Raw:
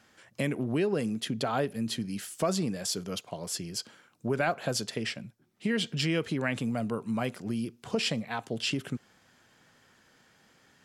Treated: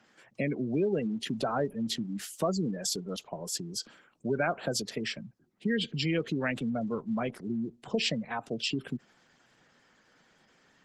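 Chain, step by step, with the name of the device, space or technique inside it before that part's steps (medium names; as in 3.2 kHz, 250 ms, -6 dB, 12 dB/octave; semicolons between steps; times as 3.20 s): noise-suppressed video call (high-pass 130 Hz 24 dB/octave; spectral gate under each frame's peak -20 dB strong; Opus 16 kbps 48 kHz)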